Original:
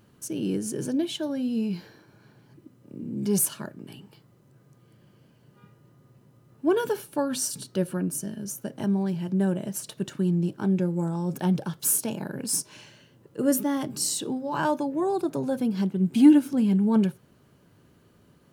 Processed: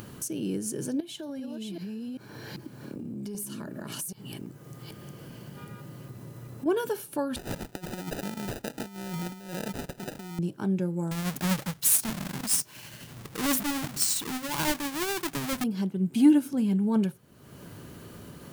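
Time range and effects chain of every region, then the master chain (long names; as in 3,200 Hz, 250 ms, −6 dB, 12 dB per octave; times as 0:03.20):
0:01.00–0:06.66: delay that plays each chunk backwards 391 ms, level −1.5 dB + downward compressor 8 to 1, threshold −36 dBFS
0:07.36–0:10.39: low-shelf EQ 200 Hz −7.5 dB + compressor whose output falls as the input rises −34 dBFS, ratio −0.5 + sample-rate reduction 1,100 Hz
0:11.11–0:15.64: each half-wave held at its own peak + parametric band 440 Hz −6.5 dB 1.8 octaves + amplitude tremolo 12 Hz, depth 33%
whole clip: high-shelf EQ 7,500 Hz +6.5 dB; upward compression, threshold −26 dBFS; level −3.5 dB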